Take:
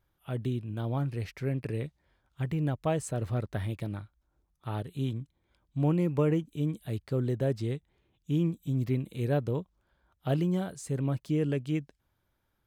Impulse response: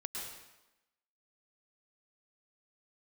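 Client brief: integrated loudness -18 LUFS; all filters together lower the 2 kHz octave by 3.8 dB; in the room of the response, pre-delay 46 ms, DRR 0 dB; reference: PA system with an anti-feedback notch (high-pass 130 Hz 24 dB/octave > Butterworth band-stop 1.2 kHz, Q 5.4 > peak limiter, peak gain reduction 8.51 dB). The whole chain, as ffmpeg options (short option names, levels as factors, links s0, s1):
-filter_complex "[0:a]equalizer=f=2000:t=o:g=-5,asplit=2[s0][s1];[1:a]atrim=start_sample=2205,adelay=46[s2];[s1][s2]afir=irnorm=-1:irlink=0,volume=0.944[s3];[s0][s3]amix=inputs=2:normalize=0,highpass=f=130:w=0.5412,highpass=f=130:w=1.3066,asuperstop=centerf=1200:order=8:qfactor=5.4,volume=5.01,alimiter=limit=0.473:level=0:latency=1"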